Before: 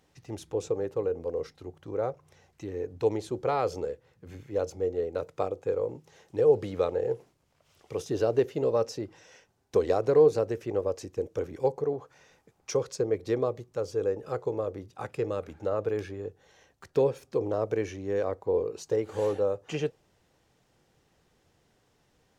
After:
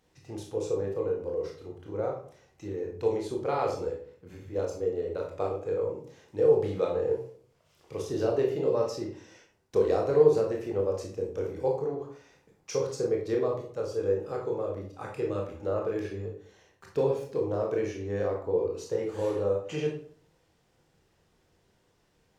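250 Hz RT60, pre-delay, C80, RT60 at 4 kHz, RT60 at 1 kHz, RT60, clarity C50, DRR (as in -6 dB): 0.65 s, 20 ms, 10.5 dB, 0.40 s, 0.50 s, 0.55 s, 5.5 dB, -0.5 dB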